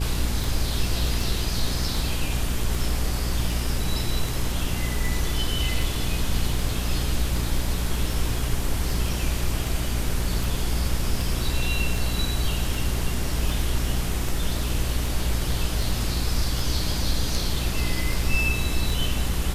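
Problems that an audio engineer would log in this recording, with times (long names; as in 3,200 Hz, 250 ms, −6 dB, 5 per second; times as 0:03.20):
mains hum 60 Hz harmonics 7 −28 dBFS
scratch tick 78 rpm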